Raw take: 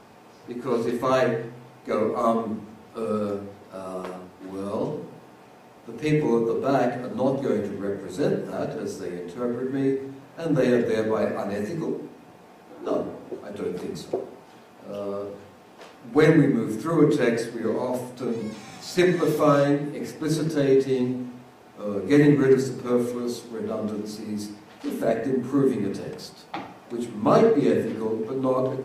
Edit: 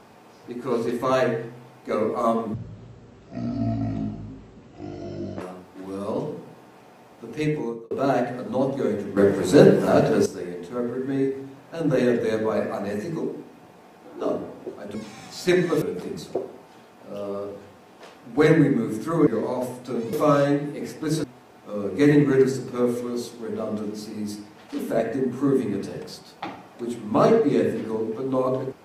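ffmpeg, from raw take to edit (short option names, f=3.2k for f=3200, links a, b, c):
-filter_complex "[0:a]asplit=11[a][b][c][d][e][f][g][h][i][j][k];[a]atrim=end=2.544[l];[b]atrim=start=2.54:end=4.06,asetpts=PTS-STARTPTS,asetrate=23373,aresample=44100,atrim=end_sample=126475,asetpts=PTS-STARTPTS[m];[c]atrim=start=4.056:end=6.56,asetpts=PTS-STARTPTS,afade=t=out:st=1.944:d=0.56[n];[d]atrim=start=6.56:end=7.822,asetpts=PTS-STARTPTS,afade=t=in:d=0.004:c=hsin[o];[e]atrim=start=7.818:end=8.912,asetpts=PTS-STARTPTS,volume=11dB[p];[f]atrim=start=8.908:end=13.602[q];[g]atrim=start=18.448:end=19.322[r];[h]atrim=start=13.598:end=17.052[s];[i]atrim=start=17.588:end=18.452[t];[j]atrim=start=19.318:end=20.432[u];[k]atrim=start=21.348[v];[l][m]acrossfade=d=0.004:c1=hsin:c2=hsin[w];[n][o]concat=n=2:v=0:a=1[x];[w][x]acrossfade=d=0.004:c1=hsin:c2=hsin[y];[y][p]acrossfade=d=0.004:c1=hsin:c2=hsin[z];[z][q]acrossfade=d=0.004:c1=hsin:c2=hsin[aa];[aa][r]acrossfade=d=0.004:c1=hsin:c2=hsin[ab];[ab][s]acrossfade=d=0.004:c1=hsin:c2=hsin[ac];[ac][t]acrossfade=d=0.004:c1=hsin:c2=hsin[ad];[ad][u]acrossfade=d=0.004:c1=hsin:c2=hsin[ae];[ae][v]acrossfade=d=0.004:c1=hsin:c2=hsin"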